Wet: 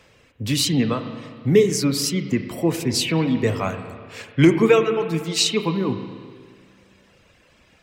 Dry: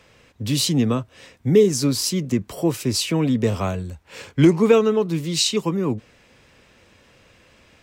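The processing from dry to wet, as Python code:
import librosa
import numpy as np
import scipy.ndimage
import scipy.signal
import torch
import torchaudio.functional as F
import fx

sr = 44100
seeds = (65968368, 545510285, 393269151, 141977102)

y = fx.dereverb_blind(x, sr, rt60_s=1.3)
y = fx.dynamic_eq(y, sr, hz=2000.0, q=1.5, threshold_db=-43.0, ratio=4.0, max_db=7)
y = fx.rev_spring(y, sr, rt60_s=1.9, pass_ms=(31, 36), chirp_ms=80, drr_db=7.5)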